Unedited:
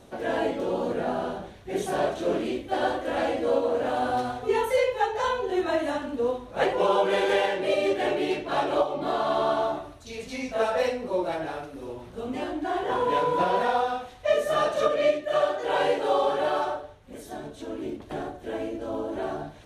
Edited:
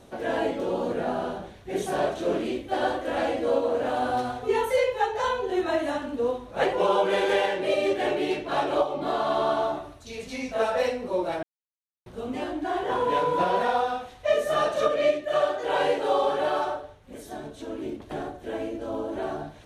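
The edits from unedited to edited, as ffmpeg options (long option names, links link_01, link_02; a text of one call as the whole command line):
ffmpeg -i in.wav -filter_complex "[0:a]asplit=3[link_01][link_02][link_03];[link_01]atrim=end=11.43,asetpts=PTS-STARTPTS,afade=type=out:start_time=11.426:duration=0.004:curve=hsin[link_04];[link_02]atrim=start=11.43:end=12.06,asetpts=PTS-STARTPTS,volume=0[link_05];[link_03]atrim=start=12.06,asetpts=PTS-STARTPTS,afade=type=in:duration=0.004:curve=hsin[link_06];[link_04][link_05][link_06]concat=n=3:v=0:a=1" out.wav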